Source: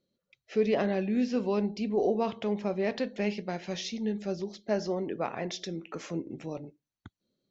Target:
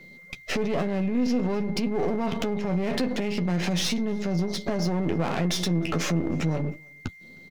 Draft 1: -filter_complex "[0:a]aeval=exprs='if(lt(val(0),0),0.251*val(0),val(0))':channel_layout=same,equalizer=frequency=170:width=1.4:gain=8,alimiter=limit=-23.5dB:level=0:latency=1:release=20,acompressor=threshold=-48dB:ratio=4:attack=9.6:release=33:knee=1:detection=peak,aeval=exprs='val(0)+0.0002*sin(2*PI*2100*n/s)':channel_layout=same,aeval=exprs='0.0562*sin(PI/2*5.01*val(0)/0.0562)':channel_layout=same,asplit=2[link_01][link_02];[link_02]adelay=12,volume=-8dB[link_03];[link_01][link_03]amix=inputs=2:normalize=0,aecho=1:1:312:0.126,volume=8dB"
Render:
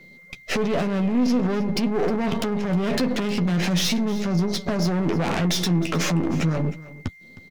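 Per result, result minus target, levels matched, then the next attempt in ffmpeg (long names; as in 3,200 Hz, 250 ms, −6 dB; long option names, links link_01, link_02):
echo-to-direct +11.5 dB; downward compressor: peak gain reduction −5.5 dB
-filter_complex "[0:a]aeval=exprs='if(lt(val(0),0),0.251*val(0),val(0))':channel_layout=same,equalizer=frequency=170:width=1.4:gain=8,alimiter=limit=-23.5dB:level=0:latency=1:release=20,acompressor=threshold=-48dB:ratio=4:attack=9.6:release=33:knee=1:detection=peak,aeval=exprs='val(0)+0.0002*sin(2*PI*2100*n/s)':channel_layout=same,aeval=exprs='0.0562*sin(PI/2*5.01*val(0)/0.0562)':channel_layout=same,asplit=2[link_01][link_02];[link_02]adelay=12,volume=-8dB[link_03];[link_01][link_03]amix=inputs=2:normalize=0,aecho=1:1:312:0.0335,volume=8dB"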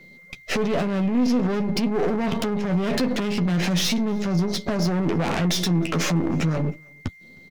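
downward compressor: peak gain reduction −5.5 dB
-filter_complex "[0:a]aeval=exprs='if(lt(val(0),0),0.251*val(0),val(0))':channel_layout=same,equalizer=frequency=170:width=1.4:gain=8,alimiter=limit=-23.5dB:level=0:latency=1:release=20,acompressor=threshold=-55.5dB:ratio=4:attack=9.6:release=33:knee=1:detection=peak,aeval=exprs='val(0)+0.0002*sin(2*PI*2100*n/s)':channel_layout=same,aeval=exprs='0.0562*sin(PI/2*5.01*val(0)/0.0562)':channel_layout=same,asplit=2[link_01][link_02];[link_02]adelay=12,volume=-8dB[link_03];[link_01][link_03]amix=inputs=2:normalize=0,aecho=1:1:312:0.0335,volume=8dB"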